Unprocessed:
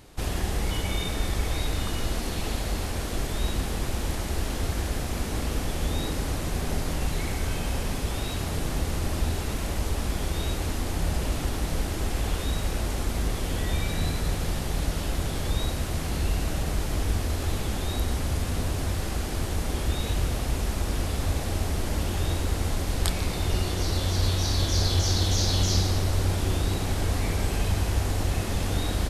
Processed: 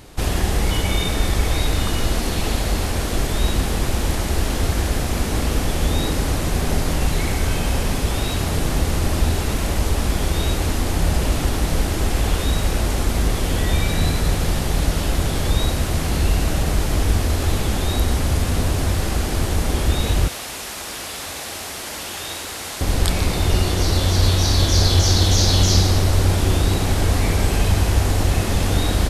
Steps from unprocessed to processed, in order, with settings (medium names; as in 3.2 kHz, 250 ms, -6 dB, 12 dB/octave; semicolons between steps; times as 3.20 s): 20.28–22.81 s: high-pass 1.4 kHz 6 dB/octave; loudness maximiser +8 dB